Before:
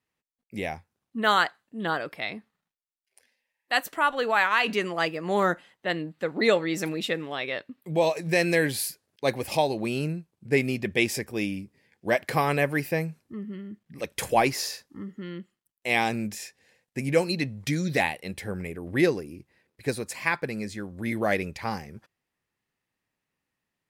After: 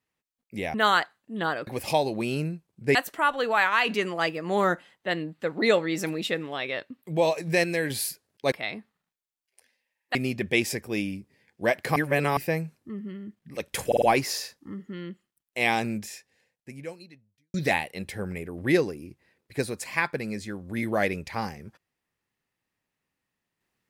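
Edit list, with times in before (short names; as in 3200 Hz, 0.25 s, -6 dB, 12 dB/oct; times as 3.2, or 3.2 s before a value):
0.74–1.18 cut
2.11–3.74 swap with 9.31–10.59
8.43–8.69 gain -4.5 dB
12.4–12.81 reverse
14.31 stutter 0.05 s, 4 plays
16.2–17.83 fade out quadratic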